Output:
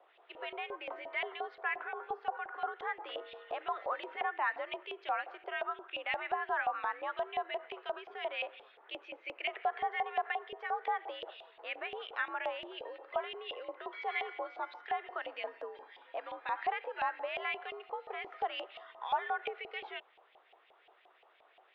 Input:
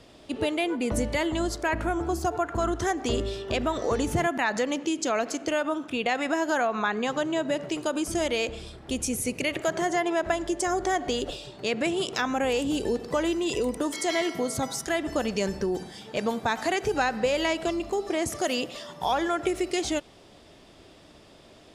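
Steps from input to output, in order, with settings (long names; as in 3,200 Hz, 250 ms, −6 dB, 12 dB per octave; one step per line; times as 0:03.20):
single-sideband voice off tune +72 Hz 280–3,500 Hz
auto-filter band-pass saw up 5.7 Hz 730–2,800 Hz
level −2.5 dB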